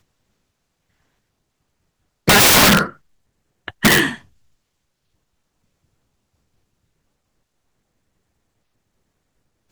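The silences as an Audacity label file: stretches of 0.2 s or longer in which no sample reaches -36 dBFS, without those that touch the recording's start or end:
2.920000	3.680000	silence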